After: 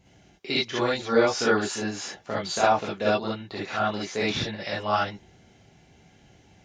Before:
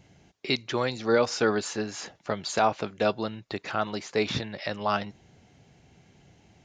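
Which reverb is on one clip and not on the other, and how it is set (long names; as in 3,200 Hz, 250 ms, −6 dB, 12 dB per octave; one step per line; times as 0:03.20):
reverb whose tail is shaped and stops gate 90 ms rising, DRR −7 dB
level −5 dB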